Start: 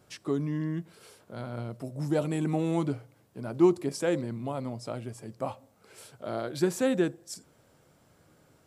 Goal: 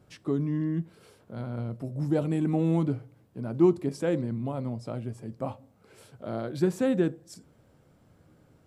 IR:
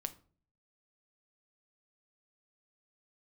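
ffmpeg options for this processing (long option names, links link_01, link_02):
-filter_complex "[0:a]lowshelf=frequency=340:gain=9.5,asplit=2[link_01][link_02];[1:a]atrim=start_sample=2205,asetrate=70560,aresample=44100,lowpass=4900[link_03];[link_02][link_03]afir=irnorm=-1:irlink=0,volume=0.5dB[link_04];[link_01][link_04]amix=inputs=2:normalize=0,volume=-7dB"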